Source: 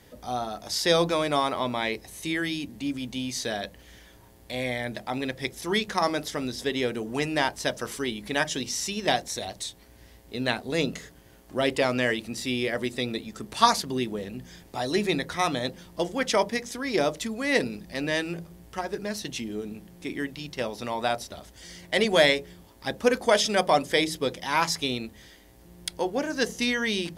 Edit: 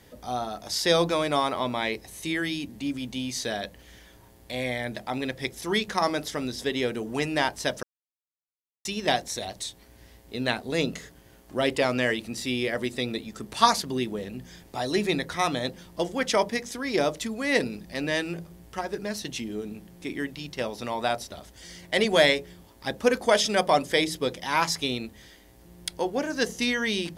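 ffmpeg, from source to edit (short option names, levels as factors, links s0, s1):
-filter_complex "[0:a]asplit=3[s0][s1][s2];[s0]atrim=end=7.83,asetpts=PTS-STARTPTS,afade=t=out:st=7.826:d=0.004:c=hsin[s3];[s1]atrim=start=7.83:end=8.85,asetpts=PTS-STARTPTS,volume=0[s4];[s2]atrim=start=8.85,asetpts=PTS-STARTPTS,afade=t=in:d=0.004:c=hsin[s5];[s3][s4][s5]concat=n=3:v=0:a=1"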